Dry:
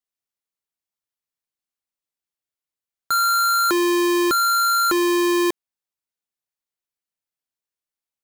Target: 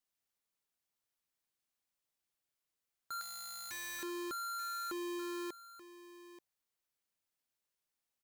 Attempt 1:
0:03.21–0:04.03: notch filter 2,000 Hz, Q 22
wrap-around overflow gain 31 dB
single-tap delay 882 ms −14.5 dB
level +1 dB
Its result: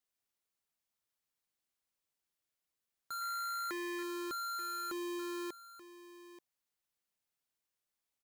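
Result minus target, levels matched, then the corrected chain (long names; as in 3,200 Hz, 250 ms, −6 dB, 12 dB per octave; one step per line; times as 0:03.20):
wrap-around overflow: distortion −9 dB
0:03.21–0:04.03: notch filter 2,000 Hz, Q 22
wrap-around overflow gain 40.5 dB
single-tap delay 882 ms −14.5 dB
level +1 dB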